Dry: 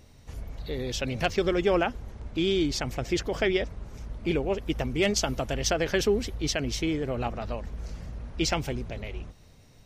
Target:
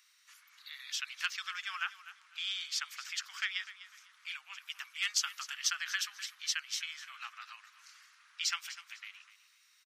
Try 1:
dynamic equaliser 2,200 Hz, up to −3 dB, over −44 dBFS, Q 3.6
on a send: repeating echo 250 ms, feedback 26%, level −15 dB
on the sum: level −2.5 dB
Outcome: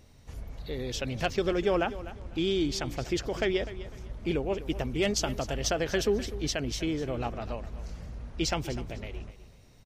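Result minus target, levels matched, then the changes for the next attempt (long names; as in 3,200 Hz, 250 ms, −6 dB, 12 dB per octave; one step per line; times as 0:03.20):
1,000 Hz band +3.5 dB
add after dynamic equaliser: Butterworth high-pass 1,200 Hz 48 dB per octave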